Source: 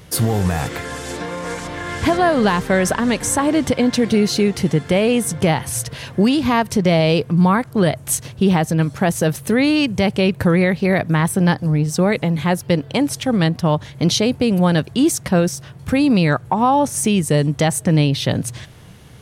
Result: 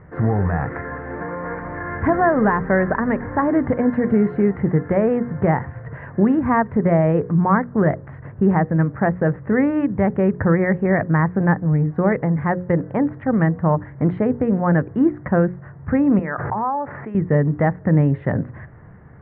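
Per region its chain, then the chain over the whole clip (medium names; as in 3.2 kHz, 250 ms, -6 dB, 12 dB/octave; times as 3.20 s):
16.19–17.15 s: high-pass 1.2 kHz 6 dB/octave + distance through air 440 m + swell ahead of each attack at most 22 dB/s
whole clip: Chebyshev low-pass 1.9 kHz, order 5; hum notches 60/120/180/240/300/360/420/480/540 Hz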